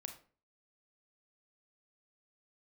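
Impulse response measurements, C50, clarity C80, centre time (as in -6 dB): 9.5 dB, 14.5 dB, 13 ms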